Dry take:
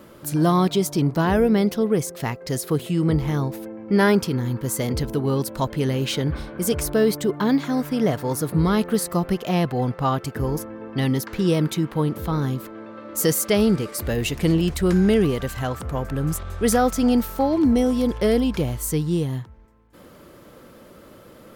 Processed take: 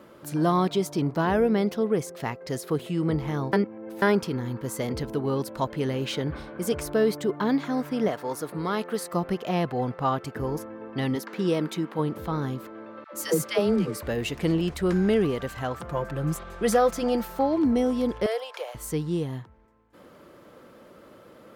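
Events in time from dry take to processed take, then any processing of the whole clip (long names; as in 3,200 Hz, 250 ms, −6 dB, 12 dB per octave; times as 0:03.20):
0:03.53–0:04.02: reverse
0:08.08–0:09.13: high-pass filter 380 Hz 6 dB per octave
0:11.15–0:11.99: linear-phase brick-wall high-pass 150 Hz
0:13.04–0:14.03: all-pass dispersion lows, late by 100 ms, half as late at 600 Hz
0:15.81–0:17.39: comb filter 5.8 ms
0:18.26–0:18.75: Butterworth high-pass 490 Hz 48 dB per octave
whole clip: high-pass filter 840 Hz 6 dB per octave; spectral tilt −3 dB per octave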